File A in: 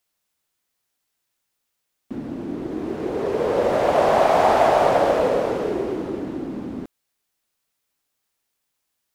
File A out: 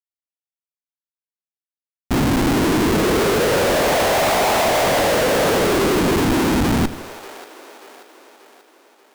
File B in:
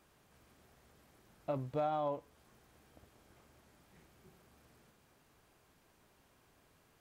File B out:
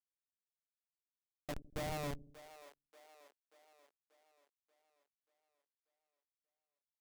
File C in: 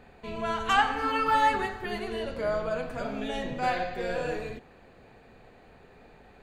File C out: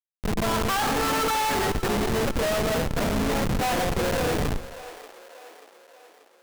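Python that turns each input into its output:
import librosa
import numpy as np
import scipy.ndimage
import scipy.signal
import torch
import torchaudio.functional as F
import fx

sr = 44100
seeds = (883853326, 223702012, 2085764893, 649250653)

y = fx.schmitt(x, sr, flips_db=-33.0)
y = fx.echo_split(y, sr, split_hz=400.0, low_ms=80, high_ms=585, feedback_pct=52, wet_db=-15)
y = y * librosa.db_to_amplitude(6.5)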